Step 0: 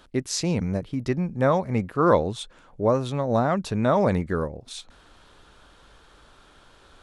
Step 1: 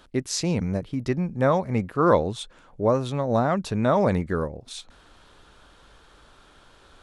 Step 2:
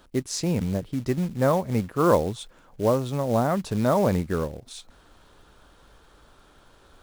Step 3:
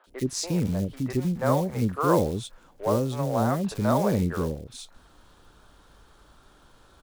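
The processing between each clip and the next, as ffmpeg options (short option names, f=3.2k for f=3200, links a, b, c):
-af anull
-af "equalizer=f=2.8k:t=o:w=2.5:g=-4.5,acrusher=bits=5:mode=log:mix=0:aa=0.000001"
-filter_complex "[0:a]acrossover=split=500|2300[a][b][c];[c]adelay=40[d];[a]adelay=70[e];[e][b][d]amix=inputs=3:normalize=0"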